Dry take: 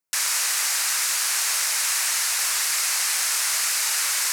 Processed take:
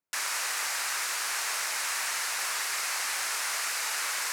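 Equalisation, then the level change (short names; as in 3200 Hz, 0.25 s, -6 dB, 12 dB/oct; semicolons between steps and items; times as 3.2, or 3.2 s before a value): high shelf 2800 Hz -11.5 dB; 0.0 dB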